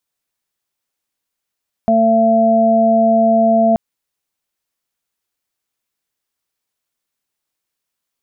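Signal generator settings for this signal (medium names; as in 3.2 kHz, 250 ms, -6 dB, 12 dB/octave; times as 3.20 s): steady additive tone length 1.88 s, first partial 225 Hz, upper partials -14/3.5 dB, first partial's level -14 dB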